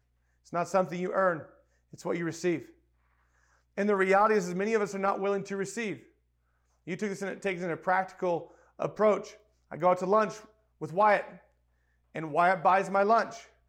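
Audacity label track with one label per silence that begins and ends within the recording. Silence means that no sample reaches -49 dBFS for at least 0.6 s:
2.700000	3.770000	silence
6.030000	6.870000	silence
11.390000	12.150000	silence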